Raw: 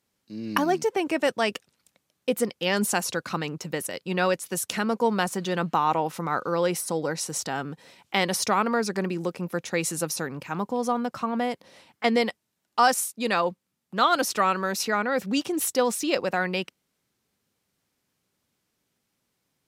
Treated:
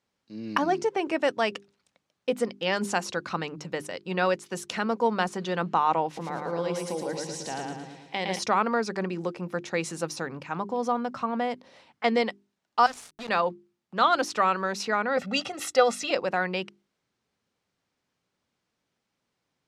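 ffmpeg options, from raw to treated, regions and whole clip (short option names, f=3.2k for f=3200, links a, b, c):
-filter_complex "[0:a]asettb=1/sr,asplit=3[a][b][c];[a]atrim=end=6.064[d];[b]atrim=start=6.06:end=8.39,asetpts=PTS-STARTPTS,afade=t=in:d=0.004:c=qsin,afade=t=out:st=2.326:d=0.004:c=qsin,equalizer=f=1.3k:w=3.4:g=-12,acompressor=threshold=-31dB:ratio=1.5:attack=3.2:release=140:knee=1:detection=peak,aecho=1:1:112|224|336|448|560|672|784:0.708|0.361|0.184|0.0939|0.0479|0.0244|0.0125,atrim=end_sample=102753[e];[c]atrim=start=8.386[f];[d][e]acrossfade=d=0.004:c1=hsin:c2=qsin[g];[g][f]acrossfade=d=0.004:c1=qsin:c2=hsin,asettb=1/sr,asplit=3[h][i][j];[h]atrim=end=12.864[k];[i]atrim=start=12.86:end=13.29,asetpts=PTS-STARTPTS,afade=t=in:d=0.004:c=qsin,afade=t=out:st=0.426:d=0.004:c=qsin,equalizer=f=750:t=o:w=0.79:g=-12,acompressor=threshold=-33dB:ratio=2.5:attack=3.2:release=140:knee=1:detection=peak,aeval=exprs='val(0)*gte(abs(val(0)),0.0211)':c=same[l];[j]atrim=start=13.286[m];[k][l]acrossfade=d=0.004:c1=hsin:c2=qsin[n];[n][m]acrossfade=d=0.004:c1=qsin:c2=hsin,asettb=1/sr,asplit=3[o][p][q];[o]atrim=end=15.174[r];[p]atrim=start=15.17:end=16.11,asetpts=PTS-STARTPTS,afade=t=in:d=0.004:c=qsin,afade=t=out:st=0.936:d=0.004:c=qsin,equalizer=f=1.8k:w=0.5:g=5,aecho=1:1:1.5:0.8,atrim=end_sample=41454[s];[q]atrim=start=16.106[t];[r][s]acrossfade=d=0.004:c1=hsin:c2=qsin[u];[u][t]acrossfade=d=0.004:c1=qsin:c2=hsin,lowpass=6.2k,equalizer=f=880:t=o:w=2.1:g=3,bandreject=f=50:t=h:w=6,bandreject=f=100:t=h:w=6,bandreject=f=150:t=h:w=6,bandreject=f=200:t=h:w=6,bandreject=f=250:t=h:w=6,bandreject=f=300:t=h:w=6,bandreject=f=350:t=h:w=6,bandreject=f=400:t=h:w=6,volume=-3dB"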